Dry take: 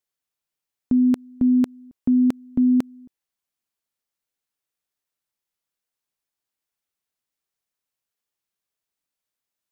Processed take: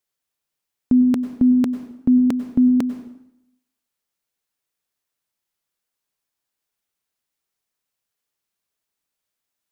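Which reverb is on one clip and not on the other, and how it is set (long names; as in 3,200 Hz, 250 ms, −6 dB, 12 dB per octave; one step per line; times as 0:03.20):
dense smooth reverb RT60 0.8 s, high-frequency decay 0.85×, pre-delay 85 ms, DRR 10 dB
level +3.5 dB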